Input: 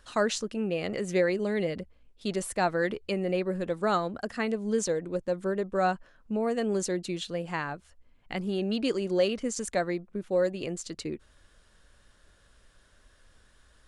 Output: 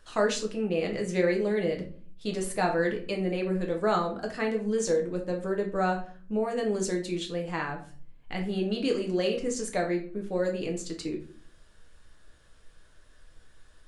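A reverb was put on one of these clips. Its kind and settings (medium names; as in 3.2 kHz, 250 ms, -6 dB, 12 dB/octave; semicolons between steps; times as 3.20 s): simulated room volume 36 m³, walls mixed, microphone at 0.49 m; trim -2 dB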